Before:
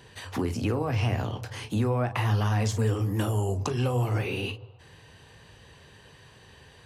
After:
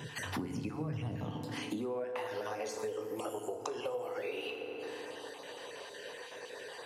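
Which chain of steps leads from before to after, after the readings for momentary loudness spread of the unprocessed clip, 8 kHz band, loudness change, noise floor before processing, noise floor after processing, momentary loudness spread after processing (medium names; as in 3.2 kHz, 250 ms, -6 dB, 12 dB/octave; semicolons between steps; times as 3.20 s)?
8 LU, -7.0 dB, -12.0 dB, -54 dBFS, -48 dBFS, 8 LU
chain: random holes in the spectrogram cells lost 24%; FDN reverb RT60 1.7 s, low-frequency decay 1.4×, high-frequency decay 0.65×, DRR 6 dB; high-pass sweep 150 Hz -> 490 Hz, 1.15–2.21 s; compression 6:1, threshold -43 dBFS, peak gain reduction 22 dB; trim +6 dB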